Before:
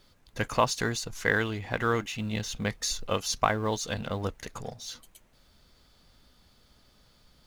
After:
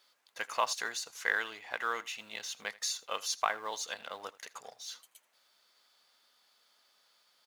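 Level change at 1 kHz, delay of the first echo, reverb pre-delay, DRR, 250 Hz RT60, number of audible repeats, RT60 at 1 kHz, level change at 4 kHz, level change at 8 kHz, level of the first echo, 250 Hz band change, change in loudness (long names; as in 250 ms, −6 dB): −5.0 dB, 81 ms, no reverb audible, no reverb audible, no reverb audible, 1, no reverb audible, −3.5 dB, −3.5 dB, −20.5 dB, −23.0 dB, −5.5 dB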